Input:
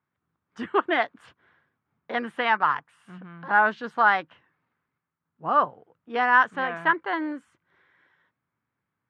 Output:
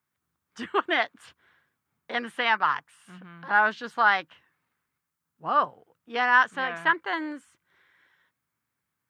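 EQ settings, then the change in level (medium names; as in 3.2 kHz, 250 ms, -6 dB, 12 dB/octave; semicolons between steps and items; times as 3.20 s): peaking EQ 73 Hz +7.5 dB 0.2 oct; treble shelf 2.2 kHz +9 dB; treble shelf 4.8 kHz +6.5 dB; -4.0 dB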